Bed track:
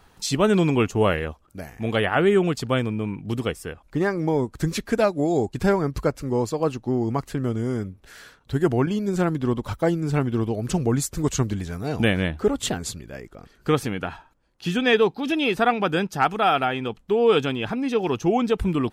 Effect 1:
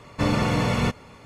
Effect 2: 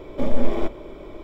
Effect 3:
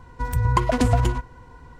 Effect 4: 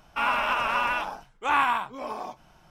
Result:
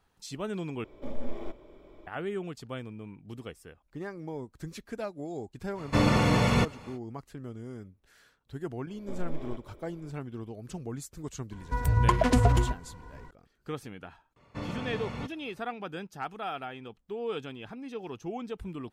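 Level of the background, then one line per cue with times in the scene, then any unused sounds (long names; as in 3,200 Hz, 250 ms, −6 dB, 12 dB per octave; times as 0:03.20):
bed track −16 dB
0:00.84: overwrite with 2 −14.5 dB
0:05.74: mix in 1 −1 dB, fades 0.05 s
0:08.89: mix in 2 −16.5 dB
0:11.52: mix in 3 −3 dB
0:14.36: mix in 1 −14.5 dB + high-shelf EQ 6,600 Hz −11 dB
not used: 4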